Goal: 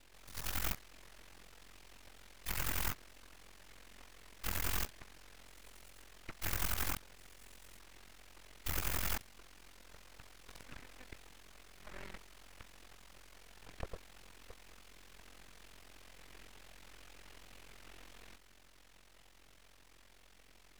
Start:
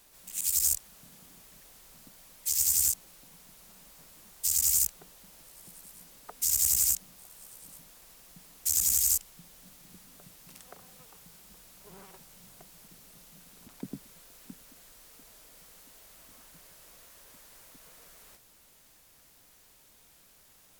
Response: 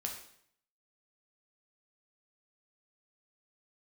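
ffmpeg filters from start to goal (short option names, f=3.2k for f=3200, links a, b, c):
-af "aeval=exprs='val(0)*sin(2*PI*22*n/s)':c=same,bandpass=f=1.1k:t=q:w=0.97:csg=0,aeval=exprs='abs(val(0))':c=same,volume=12.5dB"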